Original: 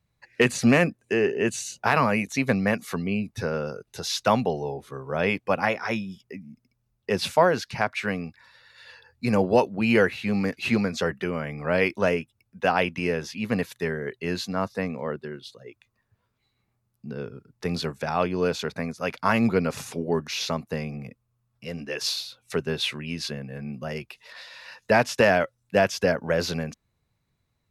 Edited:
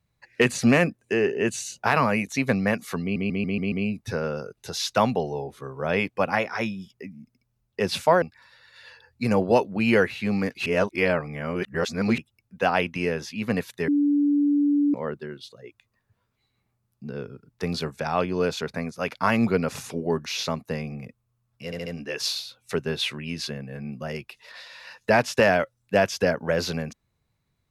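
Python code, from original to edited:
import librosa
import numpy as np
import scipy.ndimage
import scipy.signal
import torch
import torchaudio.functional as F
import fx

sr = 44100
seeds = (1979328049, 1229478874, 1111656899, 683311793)

y = fx.edit(x, sr, fx.stutter(start_s=3.02, slice_s=0.14, count=6),
    fx.cut(start_s=7.52, length_s=0.72),
    fx.reverse_span(start_s=10.68, length_s=1.52),
    fx.bleep(start_s=13.9, length_s=1.06, hz=289.0, db=-17.5),
    fx.stutter(start_s=21.67, slice_s=0.07, count=4), tone=tone)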